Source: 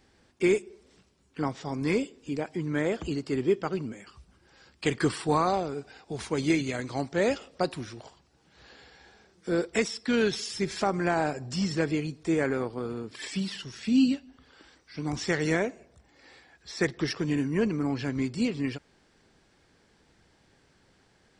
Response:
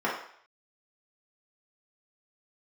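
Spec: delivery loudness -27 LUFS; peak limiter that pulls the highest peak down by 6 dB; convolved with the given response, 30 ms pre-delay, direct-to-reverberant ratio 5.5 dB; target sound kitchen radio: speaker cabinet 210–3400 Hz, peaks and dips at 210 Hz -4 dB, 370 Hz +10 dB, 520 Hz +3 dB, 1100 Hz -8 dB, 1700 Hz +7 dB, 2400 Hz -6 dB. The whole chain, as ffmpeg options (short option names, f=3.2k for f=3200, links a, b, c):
-filter_complex "[0:a]alimiter=limit=-17dB:level=0:latency=1,asplit=2[a][b];[1:a]atrim=start_sample=2205,adelay=30[c];[b][c]afir=irnorm=-1:irlink=0,volume=-18dB[d];[a][d]amix=inputs=2:normalize=0,highpass=210,equalizer=f=210:t=q:w=4:g=-4,equalizer=f=370:t=q:w=4:g=10,equalizer=f=520:t=q:w=4:g=3,equalizer=f=1.1k:t=q:w=4:g=-8,equalizer=f=1.7k:t=q:w=4:g=7,equalizer=f=2.4k:t=q:w=4:g=-6,lowpass=f=3.4k:w=0.5412,lowpass=f=3.4k:w=1.3066,volume=-0.5dB"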